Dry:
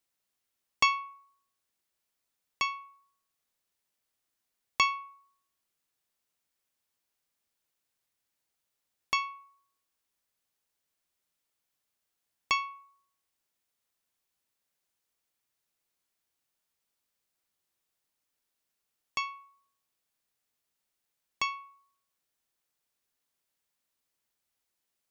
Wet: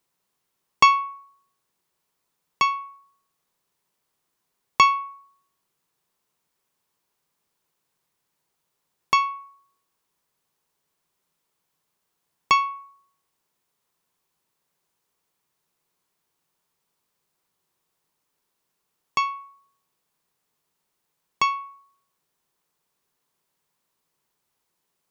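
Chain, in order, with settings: fifteen-band graphic EQ 160 Hz +10 dB, 400 Hz +7 dB, 1 kHz +8 dB; trim +5 dB

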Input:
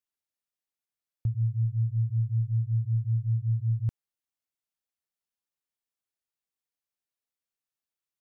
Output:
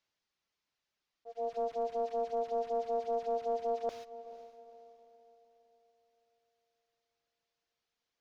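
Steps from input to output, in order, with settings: one-bit delta coder 32 kbps, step -45 dBFS; gate -44 dBFS, range -22 dB; reverb removal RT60 0.8 s; slow attack 333 ms; waveshaping leveller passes 2; echo that smears into a reverb 458 ms, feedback 41%, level -15 dB; ring modulator 580 Hz; trim -5.5 dB

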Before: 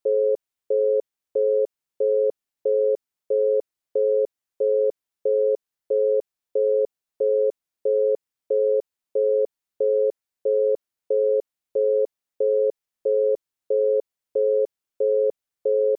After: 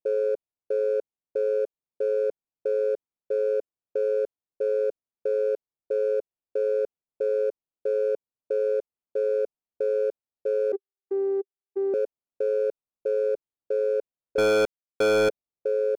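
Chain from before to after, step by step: local Wiener filter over 25 samples; 10.72–11.94 s: vocoder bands 16, saw 392 Hz; 14.38–15.29 s: waveshaping leveller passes 5; trim -3.5 dB

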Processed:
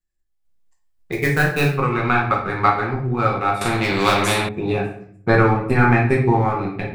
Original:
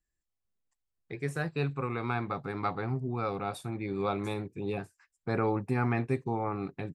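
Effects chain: dynamic bell 1.6 kHz, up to +6 dB, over -47 dBFS, Q 0.77; transient shaper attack +7 dB, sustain -7 dB; level rider gain up to 8.5 dB; in parallel at -10.5 dB: crossover distortion -31 dBFS; 1.12–1.73 s: on the sum: short-mantissa float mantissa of 2-bit; simulated room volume 97 m³, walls mixed, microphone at 1 m; 3.61–4.49 s: spectrum-flattening compressor 2:1; trim -3.5 dB

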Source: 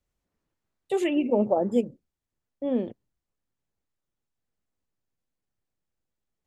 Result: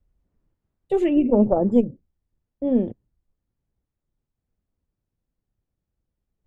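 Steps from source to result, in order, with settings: Chebyshev shaper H 2 -21 dB, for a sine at -10.5 dBFS; tilt EQ -3.5 dB/octave

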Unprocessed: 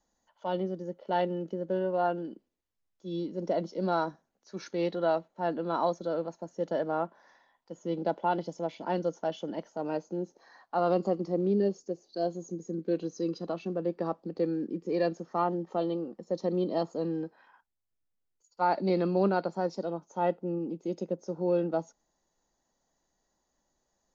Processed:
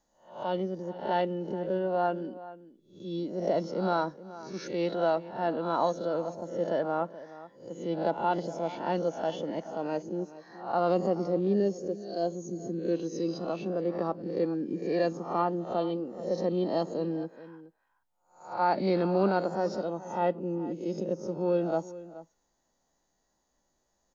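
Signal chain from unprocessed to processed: reverse spectral sustain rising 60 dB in 0.46 s; echo from a far wall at 73 m, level -16 dB

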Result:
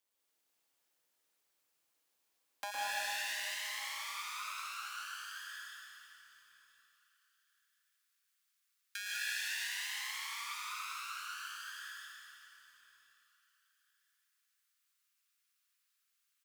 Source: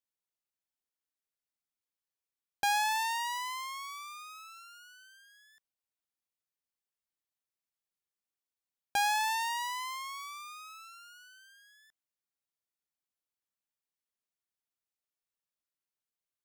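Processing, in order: steep high-pass 270 Hz 72 dB/octave, from 2.70 s 1.2 kHz; compression 2.5:1, threshold -58 dBFS, peak gain reduction 21 dB; AM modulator 200 Hz, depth 90%; feedback delay 1014 ms, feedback 23%, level -20 dB; reverberation RT60 3.0 s, pre-delay 105 ms, DRR -5.5 dB; bit-crushed delay 153 ms, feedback 35%, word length 13-bit, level -11.5 dB; trim +11 dB

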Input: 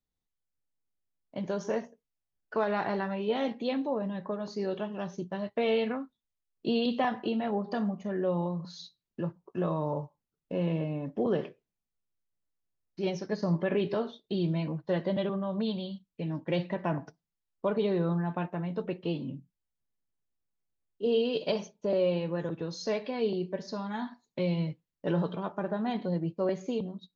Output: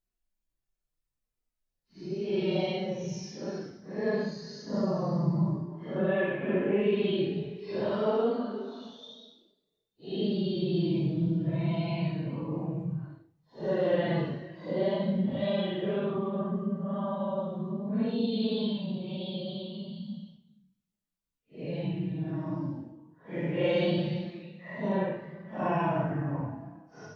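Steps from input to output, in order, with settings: Paulstretch 6.1×, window 0.05 s, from 12.65 s; flutter echo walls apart 8.3 m, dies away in 0.21 s

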